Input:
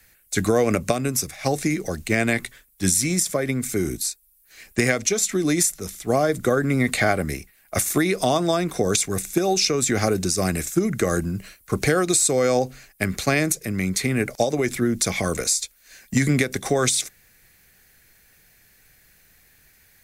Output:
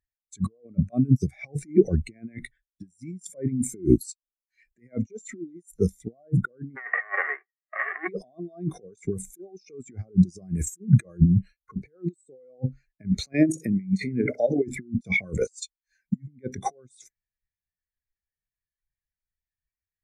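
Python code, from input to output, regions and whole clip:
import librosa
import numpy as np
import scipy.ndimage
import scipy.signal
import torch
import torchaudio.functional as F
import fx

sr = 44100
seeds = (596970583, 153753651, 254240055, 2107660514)

y = fx.envelope_flatten(x, sr, power=0.1, at=(6.75, 8.07), fade=0.02)
y = fx.cabinet(y, sr, low_hz=380.0, low_slope=24, high_hz=2300.0, hz=(410.0, 1200.0, 1900.0), db=(5, 3, 9), at=(6.75, 8.07), fade=0.02)
y = fx.chain(y, sr, fx.highpass(hz=120.0, slope=6),
    fx.over_compress(threshold_db=-24.0, ratio=-0.5),
    fx.room_flutter(wall_m=10.8, rt60_s=0.32), at=(13.33, 14.63))
y = fx.over_compress(y, sr, threshold_db=-28.0, ratio=-0.5)
y = fx.spectral_expand(y, sr, expansion=2.5)
y = y * 10.0 ** (-1.5 / 20.0)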